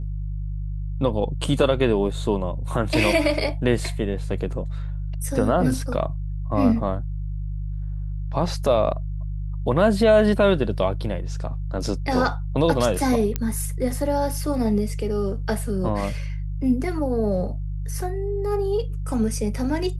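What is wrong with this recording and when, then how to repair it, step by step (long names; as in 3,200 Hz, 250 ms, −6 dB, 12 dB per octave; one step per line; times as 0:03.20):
mains hum 50 Hz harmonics 3 −28 dBFS
0:13.36: click −10 dBFS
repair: click removal
hum removal 50 Hz, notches 3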